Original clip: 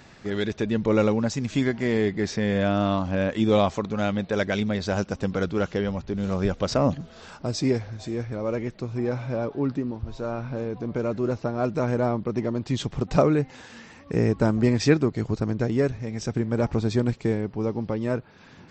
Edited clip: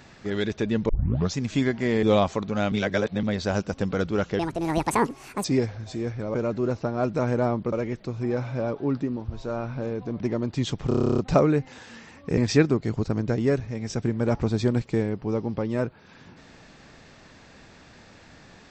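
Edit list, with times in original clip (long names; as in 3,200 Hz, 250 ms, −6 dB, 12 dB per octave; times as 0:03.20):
0:00.89: tape start 0.46 s
0:02.03–0:03.45: remove
0:04.14–0:04.65: reverse
0:05.81–0:07.57: play speed 167%
0:10.95–0:12.33: move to 0:08.47
0:13.01: stutter 0.03 s, 11 plays
0:14.20–0:14.69: remove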